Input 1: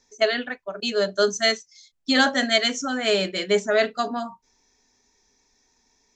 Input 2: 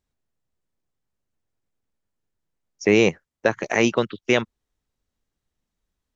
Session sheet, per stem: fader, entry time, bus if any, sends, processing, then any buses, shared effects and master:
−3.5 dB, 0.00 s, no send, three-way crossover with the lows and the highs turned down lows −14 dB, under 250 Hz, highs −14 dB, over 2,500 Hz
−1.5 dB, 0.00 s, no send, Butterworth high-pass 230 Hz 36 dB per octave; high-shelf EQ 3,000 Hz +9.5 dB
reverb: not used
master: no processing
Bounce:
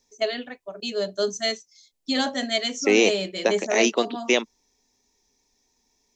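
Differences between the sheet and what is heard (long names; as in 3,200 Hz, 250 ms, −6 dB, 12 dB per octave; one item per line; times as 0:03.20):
stem 1: missing three-way crossover with the lows and the highs turned down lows −14 dB, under 250 Hz, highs −14 dB, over 2,500 Hz
master: extra parametric band 1,500 Hz −9.5 dB 0.68 octaves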